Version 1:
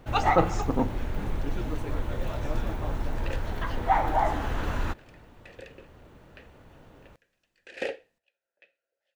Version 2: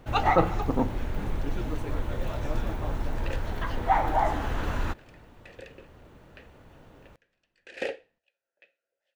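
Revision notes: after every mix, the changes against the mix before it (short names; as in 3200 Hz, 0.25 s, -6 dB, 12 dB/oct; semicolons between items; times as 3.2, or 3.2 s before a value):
speech: add LPF 2600 Hz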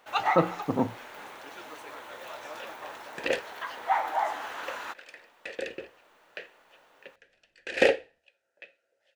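first sound: add HPF 780 Hz 12 dB/oct; second sound +11.0 dB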